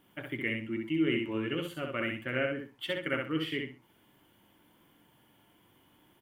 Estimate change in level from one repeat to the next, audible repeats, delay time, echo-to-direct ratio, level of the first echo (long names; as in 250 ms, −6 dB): −12.5 dB, 3, 64 ms, −3.5 dB, −4.0 dB